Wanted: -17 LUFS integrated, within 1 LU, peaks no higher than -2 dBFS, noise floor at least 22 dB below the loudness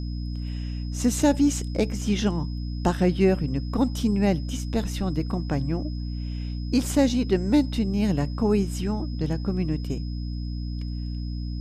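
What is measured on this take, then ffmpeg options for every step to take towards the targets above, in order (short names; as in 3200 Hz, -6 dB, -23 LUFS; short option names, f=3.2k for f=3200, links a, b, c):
hum 60 Hz; harmonics up to 300 Hz; hum level -28 dBFS; steady tone 5100 Hz; tone level -47 dBFS; loudness -26.0 LUFS; peak -7.0 dBFS; loudness target -17.0 LUFS
-> -af "bandreject=f=60:t=h:w=4,bandreject=f=120:t=h:w=4,bandreject=f=180:t=h:w=4,bandreject=f=240:t=h:w=4,bandreject=f=300:t=h:w=4"
-af "bandreject=f=5.1k:w=30"
-af "volume=9dB,alimiter=limit=-2dB:level=0:latency=1"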